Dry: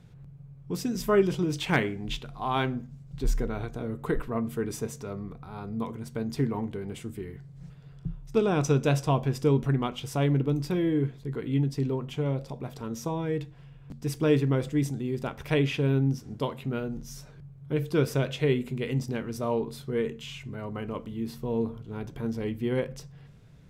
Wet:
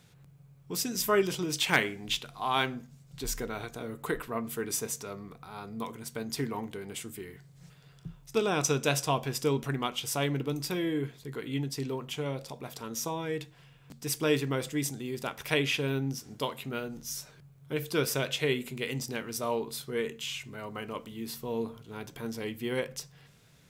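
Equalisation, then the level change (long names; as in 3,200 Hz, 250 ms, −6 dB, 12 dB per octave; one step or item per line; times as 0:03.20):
spectral tilt +3 dB per octave
0.0 dB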